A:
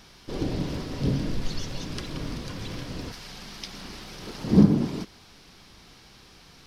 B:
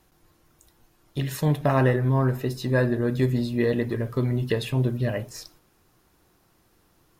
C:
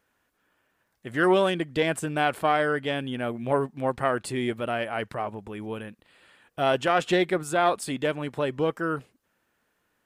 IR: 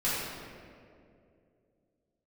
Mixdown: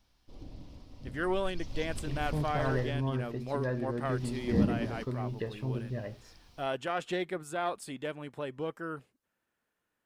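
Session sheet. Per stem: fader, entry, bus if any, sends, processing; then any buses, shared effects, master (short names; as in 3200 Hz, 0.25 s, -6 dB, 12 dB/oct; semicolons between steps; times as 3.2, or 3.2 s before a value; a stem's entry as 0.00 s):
1.42 s -18.5 dB -> 1.79 s -7 dB -> 2.84 s -7 dB -> 3.06 s -18.5 dB -> 4 s -18.5 dB -> 4.24 s -7.5 dB, 0.00 s, no send, tilt -1.5 dB/oct; requantised 12-bit, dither triangular; fifteen-band EQ 160 Hz -11 dB, 400 Hz -10 dB, 1600 Hz -11 dB
-11.0 dB, 0.90 s, no send, expander -57 dBFS; LPF 2100 Hz 6 dB/oct
-10.5 dB, 0.00 s, no send, dry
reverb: off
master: dry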